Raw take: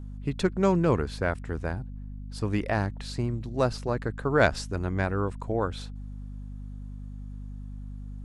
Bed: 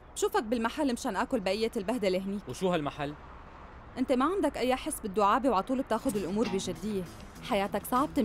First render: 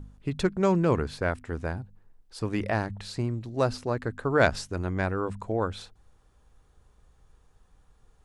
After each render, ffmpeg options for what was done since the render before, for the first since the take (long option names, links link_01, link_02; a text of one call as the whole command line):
ffmpeg -i in.wav -af "bandreject=frequency=50:width_type=h:width=4,bandreject=frequency=100:width_type=h:width=4,bandreject=frequency=150:width_type=h:width=4,bandreject=frequency=200:width_type=h:width=4,bandreject=frequency=250:width_type=h:width=4" out.wav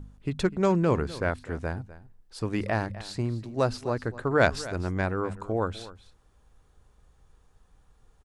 ffmpeg -i in.wav -af "aecho=1:1:251:0.141" out.wav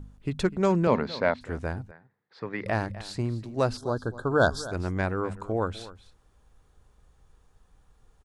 ffmpeg -i in.wav -filter_complex "[0:a]asettb=1/sr,asplit=3[link_01][link_02][link_03];[link_01]atrim=end=0.874[link_04];[link_02]atrim=start=0.87:end=1.41,asetpts=PTS-STARTPTS,afade=type=in:duration=0.004:curve=qsin,afade=type=out:start_time=0.536:duration=0.004:curve=qsin,highpass=160,equalizer=frequency=230:width_type=q:width=4:gain=8,equalizer=frequency=330:width_type=q:width=4:gain=-7,equalizer=frequency=600:width_type=q:width=4:gain=7,equalizer=frequency=910:width_type=q:width=4:gain=6,equalizer=frequency=2100:width_type=q:width=4:gain=6,equalizer=frequency=4000:width_type=q:width=4:gain=9,lowpass=frequency=5600:width=0.5412,lowpass=frequency=5600:width=1.3066[link_05];[link_03]atrim=start=1.406[link_06];[link_04][link_05]acrossfade=duration=0.004:curve1=hsin:curve2=qsin[link_07];[link_07][link_06]acrossfade=duration=0.004:curve1=qsin:curve2=hsin,asettb=1/sr,asplit=3[link_08][link_09][link_10];[link_08]atrim=end=1.914[link_11];[link_09]atrim=start=1.91:end=2.66,asetpts=PTS-STARTPTS,afade=type=in:duration=0.004:curve=qsin,afade=type=out:start_time=0.746:duration=0.004:curve=qsin,highpass=frequency=150:width=0.5412,highpass=frequency=150:width=1.3066,equalizer=frequency=220:width_type=q:width=4:gain=-8,equalizer=frequency=320:width_type=q:width=4:gain=-7,equalizer=frequency=680:width_type=q:width=4:gain=-3,equalizer=frequency=1900:width_type=q:width=4:gain=8,equalizer=frequency=2900:width_type=q:width=4:gain=-10,lowpass=frequency=3600:width=0.5412,lowpass=frequency=3600:width=1.3066[link_12];[link_10]atrim=start=2.656[link_13];[link_11][link_12]acrossfade=duration=0.004:curve1=hsin:curve2=qsin[link_14];[link_14][link_13]acrossfade=duration=0.004:curve1=qsin:curve2=hsin,asettb=1/sr,asplit=3[link_15][link_16][link_17];[link_15]atrim=end=3.774[link_18];[link_16]atrim=start=3.77:end=4.72,asetpts=PTS-STARTPTS,afade=type=in:duration=0.004:curve=qsin,afade=type=out:start_time=0.946:duration=0.004:curve=qsin,asuperstop=centerf=2300:order=20:qfactor=1.5[link_19];[link_17]atrim=start=4.716[link_20];[link_18][link_19]acrossfade=duration=0.004:curve1=hsin:curve2=qsin[link_21];[link_21][link_20]acrossfade=duration=0.004:curve1=qsin:curve2=hsin" out.wav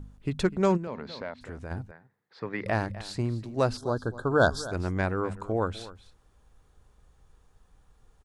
ffmpeg -i in.wav -filter_complex "[0:a]asplit=3[link_01][link_02][link_03];[link_01]afade=type=out:start_time=0.76:duration=0.02[link_04];[link_02]acompressor=threshold=-38dB:ratio=2.5:attack=3.2:release=140:knee=1:detection=peak,afade=type=in:start_time=0.76:duration=0.02,afade=type=out:start_time=1.7:duration=0.02[link_05];[link_03]afade=type=in:start_time=1.7:duration=0.02[link_06];[link_04][link_05][link_06]amix=inputs=3:normalize=0" out.wav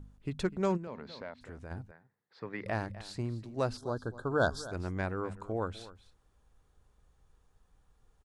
ffmpeg -i in.wav -af "volume=-6.5dB" out.wav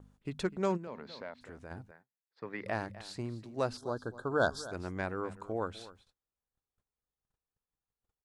ffmpeg -i in.wav -af "agate=range=-24dB:threshold=-58dB:ratio=16:detection=peak,lowshelf=frequency=100:gain=-12" out.wav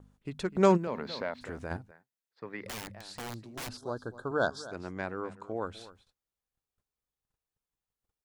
ffmpeg -i in.wav -filter_complex "[0:a]asettb=1/sr,asplit=3[link_01][link_02][link_03];[link_01]atrim=end=2.674[link_04];[link_02]atrim=start=2.67:end=3.81,asetpts=PTS-STARTPTS,afade=type=in:duration=0.004:curve=qsin,afade=type=out:start_time=1.136:duration=0.004:curve=qsin,aeval=exprs='(mod(50.1*val(0)+1,2)-1)/50.1':channel_layout=same[link_05];[link_03]atrim=start=3.806[link_06];[link_04][link_05]acrossfade=duration=0.004:curve1=hsin:curve2=qsin[link_07];[link_07][link_06]acrossfade=duration=0.004:curve1=qsin:curve2=hsin,asettb=1/sr,asplit=3[link_08][link_09][link_10];[link_08]atrim=end=4.314[link_11];[link_09]atrim=start=4.31:end=5.65,asetpts=PTS-STARTPTS,afade=type=in:duration=0.004:curve=qsin,afade=type=out:start_time=1.336:duration=0.004:curve=qsin,highpass=110,lowpass=7500[link_12];[link_10]atrim=start=5.646[link_13];[link_11][link_12]acrossfade=duration=0.004:curve1=hsin:curve2=qsin[link_14];[link_14][link_13]acrossfade=duration=0.004:curve1=qsin:curve2=hsin,asplit=3[link_15][link_16][link_17];[link_15]atrim=end=0.552[link_18];[link_16]atrim=start=0.548:end=1.772,asetpts=PTS-STARTPTS,volume=9dB[link_19];[link_17]atrim=start=1.768[link_20];[link_18][link_19]acrossfade=duration=0.004:curve1=hsin:curve2=hsin[link_21];[link_21][link_20]acrossfade=duration=0.004:curve1=hsin:curve2=hsin" out.wav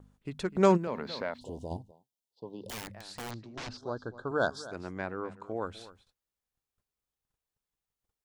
ffmpeg -i in.wav -filter_complex "[0:a]asplit=3[link_01][link_02][link_03];[link_01]afade=type=out:start_time=1.37:duration=0.02[link_04];[link_02]asuperstop=centerf=1700:order=20:qfactor=0.92,afade=type=in:start_time=1.37:duration=0.02,afade=type=out:start_time=2.7:duration=0.02[link_05];[link_03]afade=type=in:start_time=2.7:duration=0.02[link_06];[link_04][link_05][link_06]amix=inputs=3:normalize=0,asettb=1/sr,asplit=3[link_07][link_08][link_09];[link_07]atrim=end=3.314[link_10];[link_08]atrim=start=3.31:end=4.28,asetpts=PTS-STARTPTS,afade=type=in:duration=0.004:curve=qsin,afade=type=out:start_time=0.966:duration=0.004:curve=qsin,lowpass=frequency=6100:width=0.5412,lowpass=frequency=6100:width=1.3066[link_11];[link_09]atrim=start=4.276[link_12];[link_10][link_11]acrossfade=duration=0.004:curve1=hsin:curve2=qsin[link_13];[link_13][link_12]acrossfade=duration=0.004:curve1=qsin:curve2=hsin,asettb=1/sr,asplit=3[link_14][link_15][link_16];[link_14]atrim=end=4.984[link_17];[link_15]atrim=start=4.98:end=5.46,asetpts=PTS-STARTPTS,afade=type=in:duration=0.004:curve=qsin,afade=type=out:start_time=0.476:duration=0.004:curve=qsin,highshelf=frequency=6400:gain=-9[link_18];[link_16]atrim=start=5.456[link_19];[link_17][link_18]acrossfade=duration=0.004:curve1=hsin:curve2=qsin[link_20];[link_20][link_19]acrossfade=duration=0.004:curve1=qsin:curve2=hsin" out.wav